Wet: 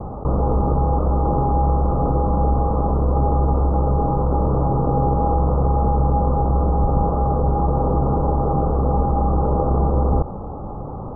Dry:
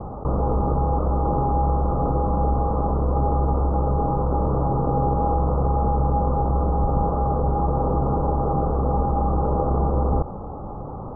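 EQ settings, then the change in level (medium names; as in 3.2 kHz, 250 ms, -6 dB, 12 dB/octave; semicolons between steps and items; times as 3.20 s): distance through air 440 m; +3.5 dB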